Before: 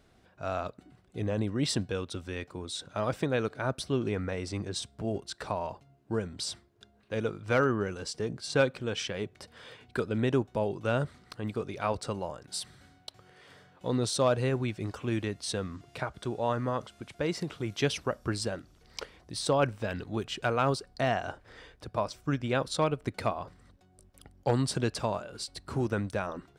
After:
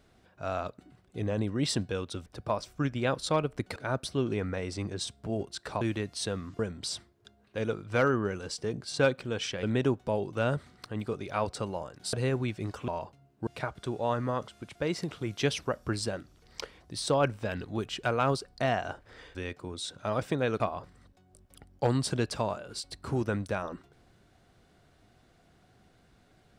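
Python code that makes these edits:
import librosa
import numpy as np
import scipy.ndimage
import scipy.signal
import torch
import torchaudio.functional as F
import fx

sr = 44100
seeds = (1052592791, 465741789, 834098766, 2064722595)

y = fx.edit(x, sr, fx.swap(start_s=2.26, length_s=1.25, other_s=21.74, other_length_s=1.5),
    fx.swap(start_s=5.56, length_s=0.59, other_s=15.08, other_length_s=0.78),
    fx.cut(start_s=9.19, length_s=0.92),
    fx.cut(start_s=12.61, length_s=1.72), tone=tone)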